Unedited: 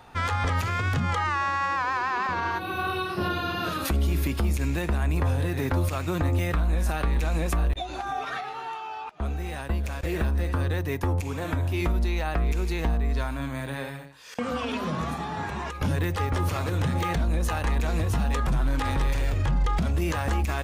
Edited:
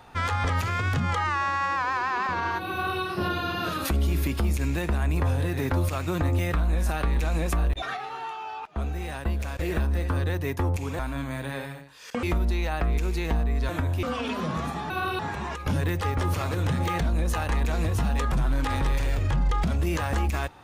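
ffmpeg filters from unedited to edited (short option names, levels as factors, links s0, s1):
-filter_complex "[0:a]asplit=8[s0][s1][s2][s3][s4][s5][s6][s7];[s0]atrim=end=7.822[s8];[s1]atrim=start=8.258:end=11.432[s9];[s2]atrim=start=13.228:end=14.472[s10];[s3]atrim=start=11.768:end=13.232[s11];[s4]atrim=start=11.428:end=11.772[s12];[s5]atrim=start=14.468:end=15.342[s13];[s6]atrim=start=2.718:end=3.012[s14];[s7]atrim=start=15.338[s15];[s8][s9]acrossfade=d=0.004:c1=hsin:c2=hsin[s16];[s16][s10]acrossfade=d=0.004:c1=hsin:c2=hsin[s17];[s17][s11]acrossfade=d=0.004:c1=hsin:c2=hsin[s18];[s18][s12]acrossfade=d=0.004:c1=hsin:c2=hsin[s19];[s19][s13]acrossfade=d=0.004:c1=hsin:c2=hsin[s20];[s20][s14]acrossfade=d=0.004:c1=hsin:c2=hsin[s21];[s21][s15]acrossfade=d=0.004:c1=hsin:c2=hsin"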